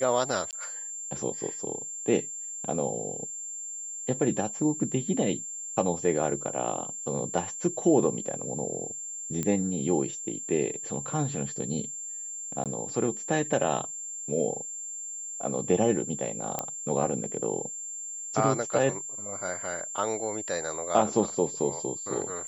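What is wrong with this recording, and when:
whistle 7,300 Hz −35 dBFS
0:00.51–0:00.53: drop-out 18 ms
0:09.43: click −16 dBFS
0:12.64–0:12.66: drop-out 17 ms
0:16.59: click −13 dBFS

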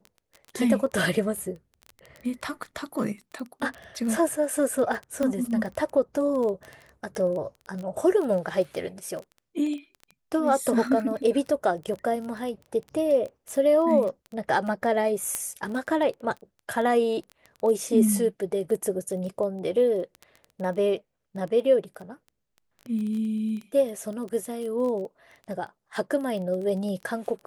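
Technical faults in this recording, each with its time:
surface crackle 13 per second −31 dBFS
0:05.23: click −16 dBFS
0:15.35: click −13 dBFS

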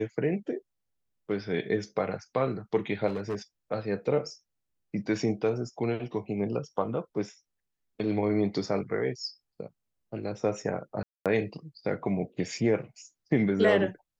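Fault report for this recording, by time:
0:03.07–0:03.35: clipping −27 dBFS
0:11.03–0:11.26: drop-out 227 ms

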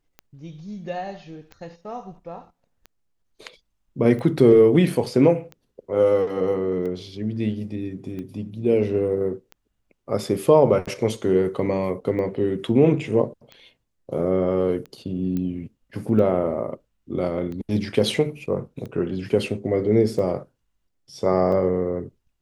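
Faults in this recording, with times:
scratch tick 45 rpm −24 dBFS
0:15.37: click −17 dBFS

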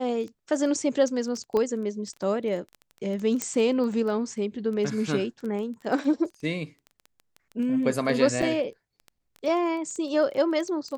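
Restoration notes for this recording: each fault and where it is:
surface crackle 10 per second −32 dBFS
0:01.57: click −16 dBFS
0:03.42: click −11 dBFS
0:08.42: drop-out 4.2 ms

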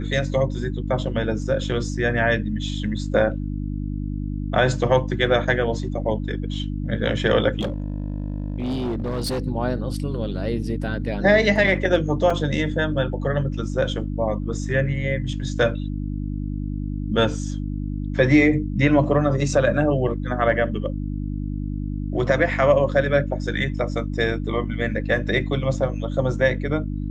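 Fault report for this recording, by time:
mains hum 50 Hz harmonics 6 −27 dBFS
0:07.60–0:09.40: clipping −21.5 dBFS
0:12.30: drop-out 3.5 ms

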